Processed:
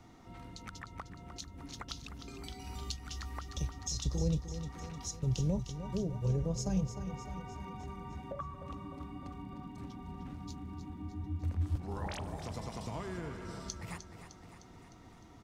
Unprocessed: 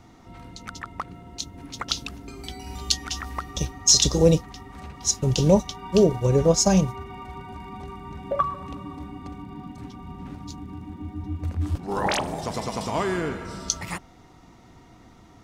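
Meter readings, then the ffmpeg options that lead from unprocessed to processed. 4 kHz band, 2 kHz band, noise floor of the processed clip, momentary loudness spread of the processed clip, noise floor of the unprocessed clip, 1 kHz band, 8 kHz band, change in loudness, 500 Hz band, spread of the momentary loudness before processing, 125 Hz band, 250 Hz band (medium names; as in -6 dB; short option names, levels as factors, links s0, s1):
-19.0 dB, -15.0 dB, -55 dBFS, 15 LU, -51 dBFS, -15.0 dB, -20.0 dB, -16.0 dB, -19.5 dB, 20 LU, -9.0 dB, -12.5 dB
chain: -filter_complex "[0:a]acrossover=split=150[s0][s1];[s1]acompressor=threshold=0.01:ratio=2.5[s2];[s0][s2]amix=inputs=2:normalize=0,asplit=2[s3][s4];[s4]aecho=0:1:305|610|915|1220|1525|1830|2135:0.299|0.176|0.104|0.0613|0.0362|0.0213|0.0126[s5];[s3][s5]amix=inputs=2:normalize=0,volume=0.501"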